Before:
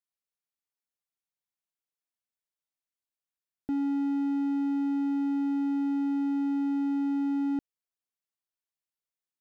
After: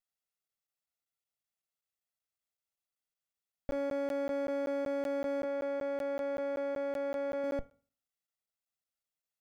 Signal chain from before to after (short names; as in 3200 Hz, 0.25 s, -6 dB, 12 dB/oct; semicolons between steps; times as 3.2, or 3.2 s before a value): minimum comb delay 1.5 ms; 5.44–7.44 tone controls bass -11 dB, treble -7 dB; reverb RT60 0.40 s, pre-delay 3 ms, DRR 14.5 dB; crackling interface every 0.19 s, samples 512, zero, from 0.48